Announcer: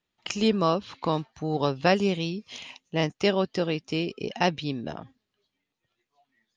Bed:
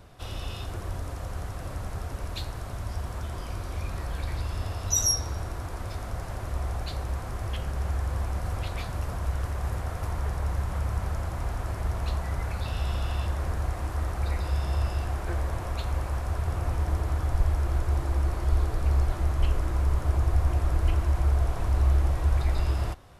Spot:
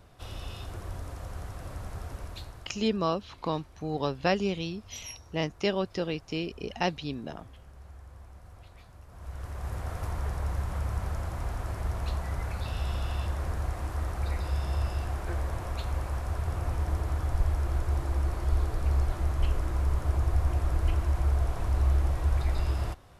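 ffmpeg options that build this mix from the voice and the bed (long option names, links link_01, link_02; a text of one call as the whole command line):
ffmpeg -i stem1.wav -i stem2.wav -filter_complex "[0:a]adelay=2400,volume=-4.5dB[link_01];[1:a]volume=12.5dB,afade=type=out:start_time=2.12:duration=0.73:silence=0.177828,afade=type=in:start_time=9.09:duration=0.84:silence=0.141254[link_02];[link_01][link_02]amix=inputs=2:normalize=0" out.wav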